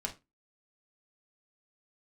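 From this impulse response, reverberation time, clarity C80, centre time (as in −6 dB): 0.20 s, 22.0 dB, 11 ms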